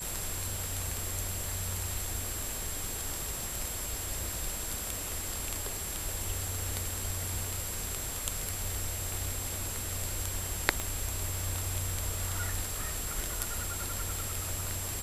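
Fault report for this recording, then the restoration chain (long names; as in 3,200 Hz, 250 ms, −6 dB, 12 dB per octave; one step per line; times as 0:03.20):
whistle 7,600 Hz −40 dBFS
0:10.80: click −17 dBFS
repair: click removal
notch filter 7,600 Hz, Q 30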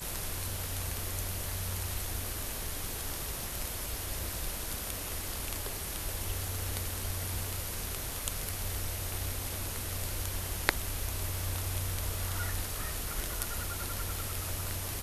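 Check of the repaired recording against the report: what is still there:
0:10.80: click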